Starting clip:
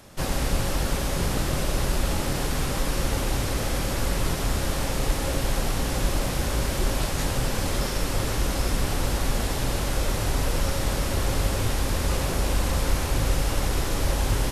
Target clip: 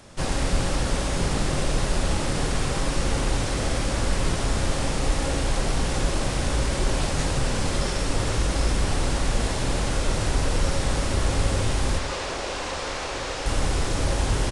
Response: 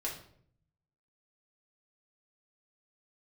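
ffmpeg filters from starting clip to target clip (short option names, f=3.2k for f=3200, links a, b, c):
-filter_complex "[0:a]asettb=1/sr,asplit=3[a][b][c];[a]atrim=end=11.984[d];[b]atrim=start=11.98:end=13.46,asetpts=PTS-STARTPTS,afade=t=in:d=0.004:c=qsin,afade=t=out:st=1.476:d=0.004:c=qsin,acrossover=split=350 7400:gain=0.158 1 0.178[e][f][g];[e][f][g]amix=inputs=3:normalize=0[h];[c]atrim=start=13.456[i];[d][h]acrossfade=d=0.004:c1=hsin:c2=qsin[j];[j][i]acrossfade=d=0.004:c1=qsin:c2=hsin,aresample=22050,aresample=44100,acontrast=76,asplit=2[k][l];[1:a]atrim=start_sample=2205,adelay=54[m];[l][m]afir=irnorm=-1:irlink=0,volume=-9.5dB[n];[k][n]amix=inputs=2:normalize=0,volume=-6dB"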